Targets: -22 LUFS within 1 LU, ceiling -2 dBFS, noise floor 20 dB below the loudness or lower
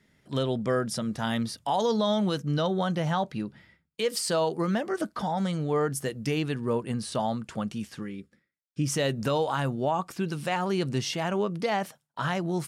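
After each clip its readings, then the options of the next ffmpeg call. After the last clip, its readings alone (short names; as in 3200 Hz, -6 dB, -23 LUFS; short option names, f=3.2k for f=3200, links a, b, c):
loudness -29.0 LUFS; peak -17.0 dBFS; loudness target -22.0 LUFS
-> -af "volume=7dB"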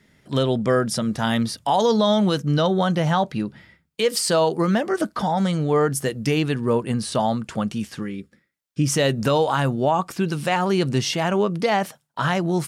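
loudness -22.0 LUFS; peak -10.0 dBFS; noise floor -69 dBFS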